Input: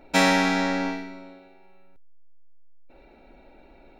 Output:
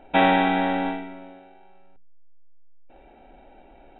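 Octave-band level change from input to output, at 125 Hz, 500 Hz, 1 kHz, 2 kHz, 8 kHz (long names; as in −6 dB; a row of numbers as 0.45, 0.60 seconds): can't be measured, +2.0 dB, +4.5 dB, −1.5 dB, below −40 dB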